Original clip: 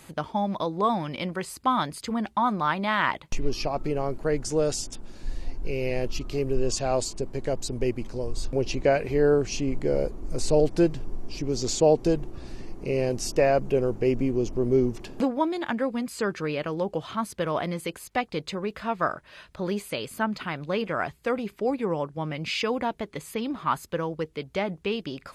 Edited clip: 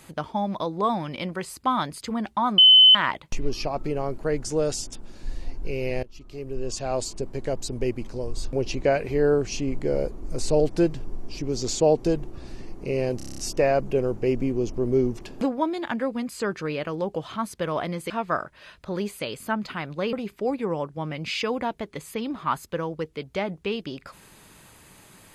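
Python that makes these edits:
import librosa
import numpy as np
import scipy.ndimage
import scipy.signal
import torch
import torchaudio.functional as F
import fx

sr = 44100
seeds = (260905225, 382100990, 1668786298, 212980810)

y = fx.edit(x, sr, fx.bleep(start_s=2.58, length_s=0.37, hz=3040.0, db=-9.0),
    fx.fade_in_from(start_s=6.03, length_s=1.15, floor_db=-21.5),
    fx.stutter(start_s=13.17, slice_s=0.03, count=8),
    fx.cut(start_s=17.89, length_s=0.92),
    fx.cut(start_s=20.84, length_s=0.49), tone=tone)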